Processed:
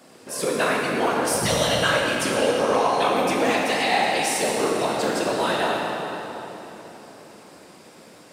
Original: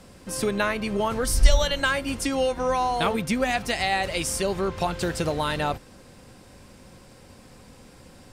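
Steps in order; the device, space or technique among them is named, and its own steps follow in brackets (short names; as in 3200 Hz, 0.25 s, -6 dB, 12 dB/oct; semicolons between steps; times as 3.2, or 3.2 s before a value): whispering ghost (whisperiser; HPF 250 Hz 12 dB/oct; reverb RT60 3.7 s, pre-delay 13 ms, DRR -2.5 dB)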